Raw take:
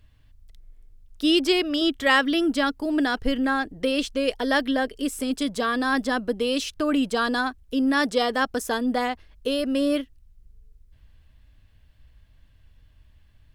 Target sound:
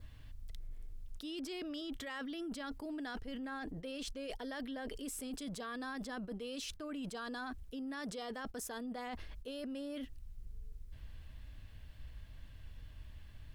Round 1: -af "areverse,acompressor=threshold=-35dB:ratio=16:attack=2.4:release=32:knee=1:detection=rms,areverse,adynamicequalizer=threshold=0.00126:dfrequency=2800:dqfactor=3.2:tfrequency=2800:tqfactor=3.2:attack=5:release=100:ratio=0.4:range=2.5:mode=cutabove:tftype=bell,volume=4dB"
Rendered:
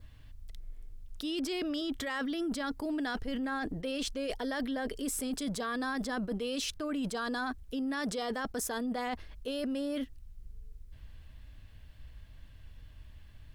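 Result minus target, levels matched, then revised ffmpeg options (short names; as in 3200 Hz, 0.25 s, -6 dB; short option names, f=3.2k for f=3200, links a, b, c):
compressor: peak gain reduction -8.5 dB
-af "areverse,acompressor=threshold=-44dB:ratio=16:attack=2.4:release=32:knee=1:detection=rms,areverse,adynamicequalizer=threshold=0.00126:dfrequency=2800:dqfactor=3.2:tfrequency=2800:tqfactor=3.2:attack=5:release=100:ratio=0.4:range=2.5:mode=cutabove:tftype=bell,volume=4dB"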